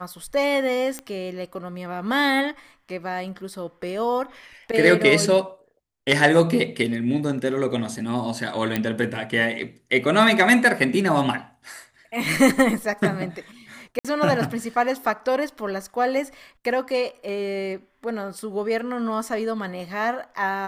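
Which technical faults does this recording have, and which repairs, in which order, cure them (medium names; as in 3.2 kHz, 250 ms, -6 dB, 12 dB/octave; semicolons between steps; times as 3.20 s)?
0.99 s: pop -16 dBFS
8.76 s: pop -9 dBFS
13.99–14.05 s: dropout 56 ms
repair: de-click; interpolate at 13.99 s, 56 ms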